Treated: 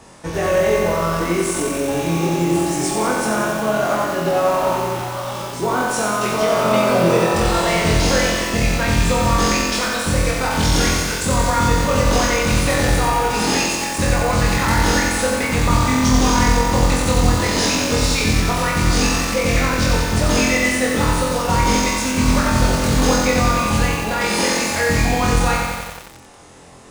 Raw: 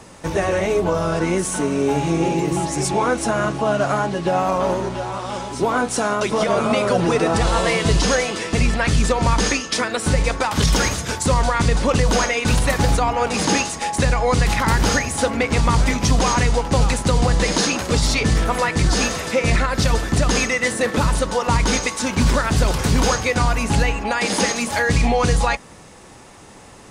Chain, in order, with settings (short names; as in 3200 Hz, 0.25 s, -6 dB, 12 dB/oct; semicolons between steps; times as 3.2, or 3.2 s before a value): flutter echo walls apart 4 m, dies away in 0.5 s; lo-fi delay 90 ms, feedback 80%, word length 5-bit, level -3.5 dB; gain -3.5 dB